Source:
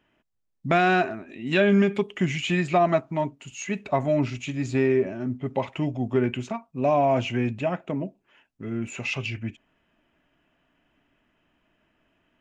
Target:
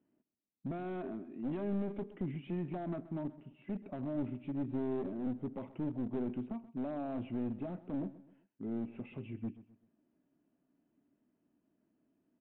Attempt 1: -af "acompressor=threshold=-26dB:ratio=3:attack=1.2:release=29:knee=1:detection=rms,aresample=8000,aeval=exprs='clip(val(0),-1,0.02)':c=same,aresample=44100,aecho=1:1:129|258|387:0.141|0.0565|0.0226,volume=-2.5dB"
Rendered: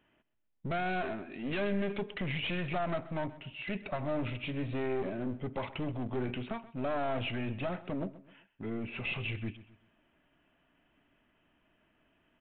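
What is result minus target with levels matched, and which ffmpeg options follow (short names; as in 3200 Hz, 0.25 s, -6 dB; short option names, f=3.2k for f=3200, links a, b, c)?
250 Hz band -4.0 dB
-af "acompressor=threshold=-26dB:ratio=3:attack=1.2:release=29:knee=1:detection=rms,bandpass=f=260:t=q:w=1.7:csg=0,aresample=8000,aeval=exprs='clip(val(0),-1,0.02)':c=same,aresample=44100,aecho=1:1:129|258|387:0.141|0.0565|0.0226,volume=-2.5dB"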